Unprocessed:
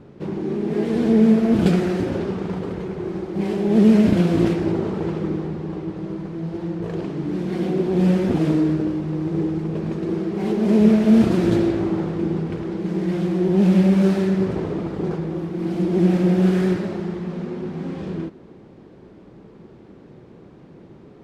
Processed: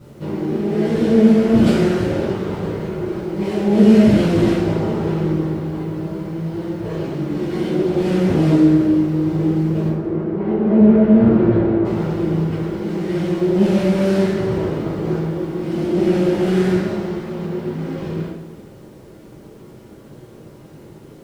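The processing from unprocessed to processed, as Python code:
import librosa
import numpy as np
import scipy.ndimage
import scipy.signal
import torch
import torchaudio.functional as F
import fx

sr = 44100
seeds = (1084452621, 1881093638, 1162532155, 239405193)

y = fx.quant_dither(x, sr, seeds[0], bits=10, dither='none')
y = fx.lowpass(y, sr, hz=1400.0, slope=12, at=(9.88, 11.85))
y = fx.rev_double_slope(y, sr, seeds[1], early_s=0.55, late_s=2.4, knee_db=-17, drr_db=-9.5)
y = y * librosa.db_to_amplitude(-5.5)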